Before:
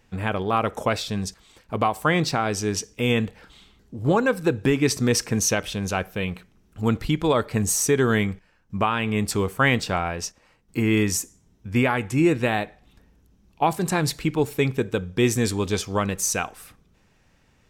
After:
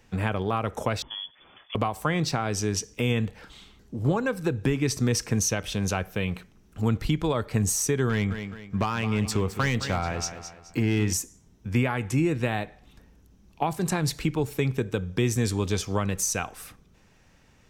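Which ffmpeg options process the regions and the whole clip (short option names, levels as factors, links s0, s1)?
-filter_complex "[0:a]asettb=1/sr,asplit=3[s0][s1][s2];[s0]atrim=end=1.024[s3];[s1]atrim=start=1.02:end=1.75,asetpts=PTS-STARTPTS,afade=t=in:d=0.004:c=qsin,afade=t=out:st=0.726:d=0.004:c=qsin,aemphasis=mode=production:type=75fm,acompressor=threshold=0.00794:ratio=2:attack=3.2:release=140:knee=1:detection=peak,lowpass=f=3000:t=q:w=0.5098,lowpass=f=3000:t=q:w=0.6013,lowpass=f=3000:t=q:w=0.9,lowpass=f=3000:t=q:w=2.563,afreqshift=-3500[s4];[s2]atrim=start=1.746[s5];[s3][s4]acrossfade=d=0.004:c1=hsin:c2=qsin[s6];[s6][s5]acrossfade=d=0.004:c1=qsin:c2=hsin,asettb=1/sr,asplit=3[s7][s8][s9];[s7]atrim=end=8.094[s10];[s8]atrim=start=8.09:end=11.13,asetpts=PTS-STARTPTS,afade=t=in:d=0.004:c=qsin,afade=t=out:st=3.036:d=0.004:c=qsin,equalizer=f=11000:w=1.1:g=-7.5,asoftclip=type=hard:threshold=0.15,aecho=1:1:212|424|636:0.224|0.0761|0.0259,atrim=end_sample=134064[s11];[s9]atrim=start=11.126[s12];[s10][s11]acrossfade=d=0.004:c1=hsin:c2=qsin[s13];[s13][s12]acrossfade=d=0.004:c1=qsin:c2=hsin,equalizer=f=6000:t=o:w=0.31:g=2.5,acrossover=split=140[s14][s15];[s15]acompressor=threshold=0.0355:ratio=2.5[s16];[s14][s16]amix=inputs=2:normalize=0,volume=1.26"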